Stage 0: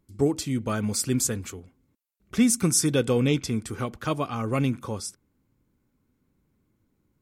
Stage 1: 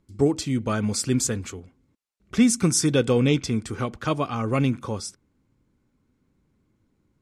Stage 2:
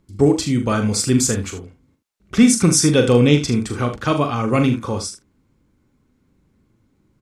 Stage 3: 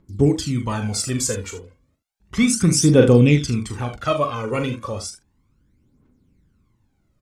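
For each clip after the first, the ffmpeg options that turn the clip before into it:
ffmpeg -i in.wav -af "lowpass=8000,volume=2.5dB" out.wav
ffmpeg -i in.wav -af "aecho=1:1:41|76:0.422|0.251,volume=5.5dB" out.wav
ffmpeg -i in.wav -af "aphaser=in_gain=1:out_gain=1:delay=2.2:decay=0.65:speed=0.33:type=triangular,volume=-5.5dB" out.wav

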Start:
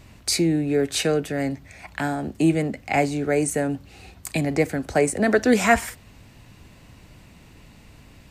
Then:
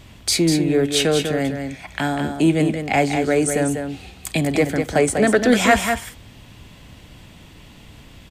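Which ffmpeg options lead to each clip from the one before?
ffmpeg -i in.wav -filter_complex "[0:a]equalizer=frequency=3300:width=6.8:gain=11,asplit=2[link_01][link_02];[link_02]asoftclip=type=tanh:threshold=-16dB,volume=-6dB[link_03];[link_01][link_03]amix=inputs=2:normalize=0,aecho=1:1:196:0.473" out.wav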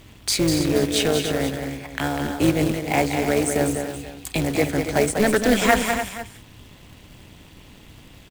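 ffmpeg -i in.wav -af "acrusher=bits=3:mode=log:mix=0:aa=0.000001,aecho=1:1:283:0.335,tremolo=f=210:d=0.667" out.wav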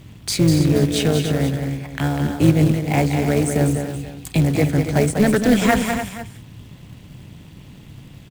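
ffmpeg -i in.wav -af "equalizer=frequency=140:width=0.9:gain=12.5,volume=-1.5dB" out.wav

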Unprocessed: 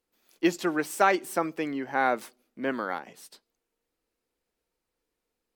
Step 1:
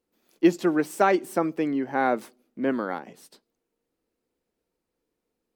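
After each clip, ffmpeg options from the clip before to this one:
ffmpeg -i in.wav -af "equalizer=frequency=230:width=0.37:gain=9.5,volume=-3dB" out.wav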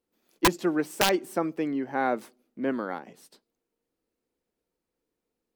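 ffmpeg -i in.wav -af "aeval=exprs='(mod(3.35*val(0)+1,2)-1)/3.35':channel_layout=same,volume=-3dB" out.wav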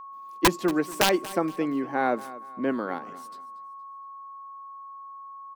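ffmpeg -i in.wav -af "aecho=1:1:234|468|702:0.126|0.0403|0.0129,aeval=exprs='val(0)+0.00891*sin(2*PI*1100*n/s)':channel_layout=same,volume=1.5dB" out.wav

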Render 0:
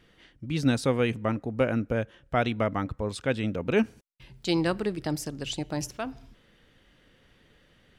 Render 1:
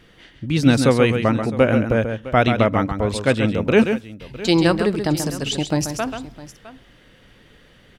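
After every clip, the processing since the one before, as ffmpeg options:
ffmpeg -i in.wav -af "aecho=1:1:135|659:0.422|0.141,volume=9dB" out.wav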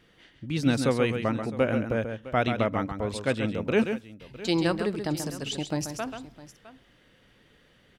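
ffmpeg -i in.wav -af "lowshelf=frequency=62:gain=-7,volume=-8.5dB" out.wav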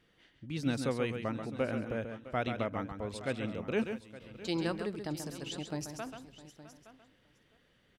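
ffmpeg -i in.wav -af "aecho=1:1:867:0.158,volume=-8.5dB" out.wav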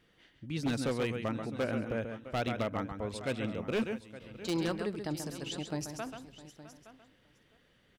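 ffmpeg -i in.wav -af "aeval=exprs='0.0501*(abs(mod(val(0)/0.0501+3,4)-2)-1)':channel_layout=same,volume=1.5dB" out.wav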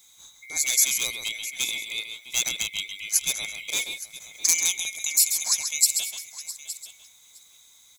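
ffmpeg -i in.wav -af "afftfilt=real='real(if(lt(b,920),b+92*(1-2*mod(floor(b/92),2)),b),0)':imag='imag(if(lt(b,920),b+92*(1-2*mod(floor(b/92),2)),b),0)':win_size=2048:overlap=0.75,aexciter=amount=13:drive=7.4:freq=4000" out.wav

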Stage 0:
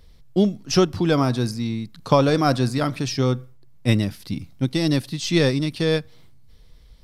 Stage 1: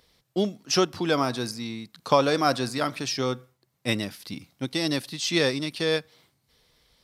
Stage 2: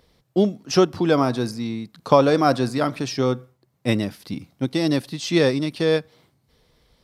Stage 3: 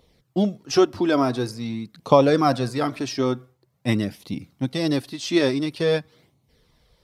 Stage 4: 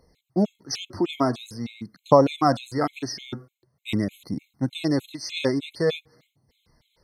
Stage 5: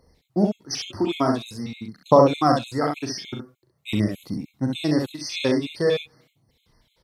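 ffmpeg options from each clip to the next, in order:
ffmpeg -i in.wav -af "highpass=frequency=540:poles=1" out.wav
ffmpeg -i in.wav -af "tiltshelf=frequency=1200:gain=5,volume=2.5dB" out.wav
ffmpeg -i in.wav -af "flanger=delay=0.3:depth=2.9:regen=-35:speed=0.47:shape=sinusoidal,volume=2.5dB" out.wav
ffmpeg -i in.wav -af "afftfilt=real='re*gt(sin(2*PI*3.3*pts/sr)*(1-2*mod(floor(b*sr/1024/2100),2)),0)':imag='im*gt(sin(2*PI*3.3*pts/sr)*(1-2*mod(floor(b*sr/1024/2100),2)),0)':win_size=1024:overlap=0.75" out.wav
ffmpeg -i in.wav -af "aecho=1:1:39|66:0.422|0.631" out.wav

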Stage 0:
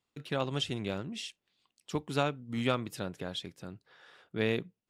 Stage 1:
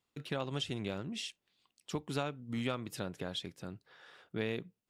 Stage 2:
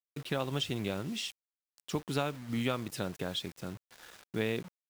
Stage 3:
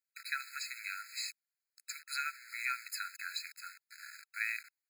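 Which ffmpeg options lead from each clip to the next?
ffmpeg -i in.wav -af "acompressor=threshold=-34dB:ratio=2.5" out.wav
ffmpeg -i in.wav -af "acrusher=bits=8:mix=0:aa=0.000001,volume=3.5dB" out.wav
ffmpeg -i in.wav -af "afftfilt=real='re*eq(mod(floor(b*sr/1024/1300),2),1)':imag='im*eq(mod(floor(b*sr/1024/1300),2),1)':win_size=1024:overlap=0.75,volume=5.5dB" out.wav

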